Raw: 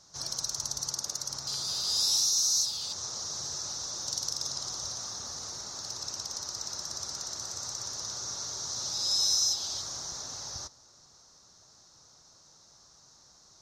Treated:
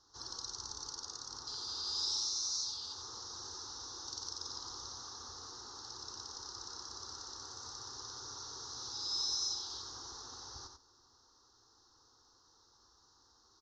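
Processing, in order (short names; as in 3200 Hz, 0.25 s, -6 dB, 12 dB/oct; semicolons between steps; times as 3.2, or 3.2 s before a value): LPF 5000 Hz 24 dB/oct; fixed phaser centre 620 Hz, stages 6; echo 91 ms -6 dB; gain -3.5 dB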